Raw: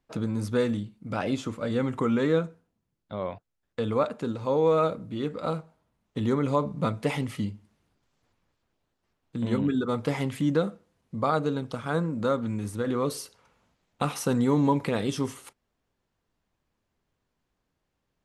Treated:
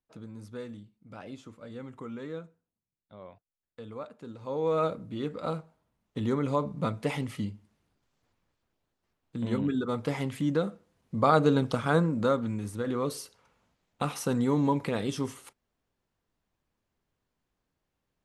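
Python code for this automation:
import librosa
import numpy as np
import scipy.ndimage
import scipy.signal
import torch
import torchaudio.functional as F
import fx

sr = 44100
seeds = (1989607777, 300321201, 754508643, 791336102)

y = fx.gain(x, sr, db=fx.line((4.15, -15.0), (4.84, -3.0), (10.59, -3.0), (11.63, 6.0), (12.64, -3.0)))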